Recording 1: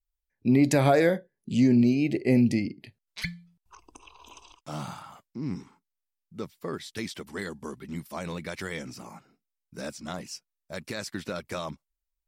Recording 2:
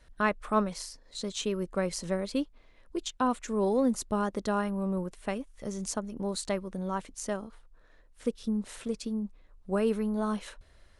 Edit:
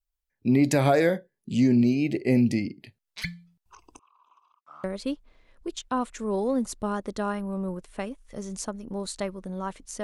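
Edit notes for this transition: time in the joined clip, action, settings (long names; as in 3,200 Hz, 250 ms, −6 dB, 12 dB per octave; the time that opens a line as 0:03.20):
recording 1
0:03.99–0:04.84: resonant band-pass 1,200 Hz, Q 7.2
0:04.84: continue with recording 2 from 0:02.13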